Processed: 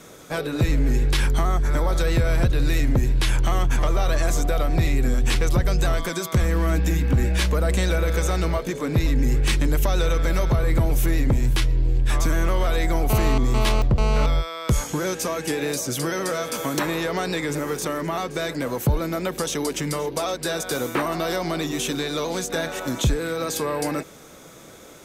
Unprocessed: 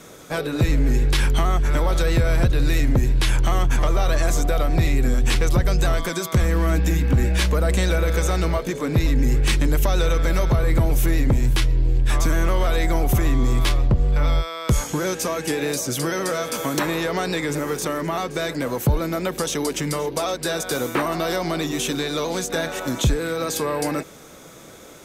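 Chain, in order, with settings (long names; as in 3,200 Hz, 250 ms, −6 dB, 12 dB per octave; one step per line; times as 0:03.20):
0:01.27–0:02.00: parametric band 2,800 Hz −8.5 dB 0.43 octaves
0:13.10–0:14.26: phone interference −25 dBFS
level −1.5 dB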